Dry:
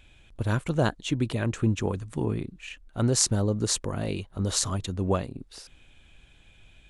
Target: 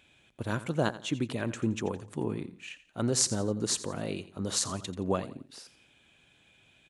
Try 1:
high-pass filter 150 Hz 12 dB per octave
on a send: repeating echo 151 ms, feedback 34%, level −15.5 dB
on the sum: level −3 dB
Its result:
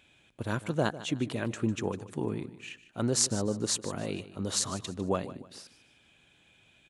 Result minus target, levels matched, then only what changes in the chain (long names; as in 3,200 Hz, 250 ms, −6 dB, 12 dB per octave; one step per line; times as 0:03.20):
echo 65 ms late
change: repeating echo 86 ms, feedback 34%, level −15.5 dB